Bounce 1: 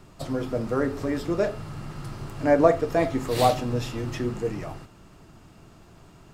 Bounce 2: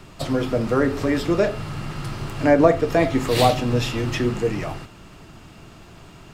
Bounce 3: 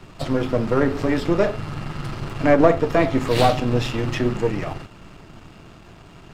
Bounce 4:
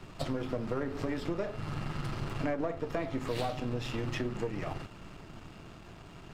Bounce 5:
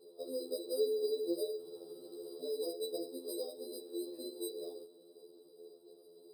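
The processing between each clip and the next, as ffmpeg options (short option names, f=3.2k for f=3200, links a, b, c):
-filter_complex "[0:a]equalizer=f=2.8k:w=0.88:g=5.5,acrossover=split=380[a][b];[b]acompressor=threshold=-28dB:ratio=1.5[c];[a][c]amix=inputs=2:normalize=0,volume=6dB"
-af "aeval=exprs='if(lt(val(0),0),0.447*val(0),val(0))':c=same,highshelf=f=5.6k:g=-8,volume=3dB"
-af "acompressor=threshold=-25dB:ratio=6,volume=-5dB"
-af "asuperpass=centerf=430:order=4:qfactor=3.8,acrusher=samples=10:mix=1:aa=0.000001,afftfilt=real='re*2*eq(mod(b,4),0)':imag='im*2*eq(mod(b,4),0)':win_size=2048:overlap=0.75,volume=8dB"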